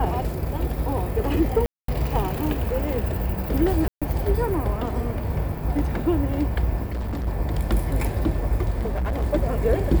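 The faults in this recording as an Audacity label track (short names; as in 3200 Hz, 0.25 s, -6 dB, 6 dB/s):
1.660000	1.880000	gap 0.223 s
3.880000	4.020000	gap 0.136 s
6.840000	7.280000	clipped -24.5 dBFS
8.790000	9.240000	clipped -21.5 dBFS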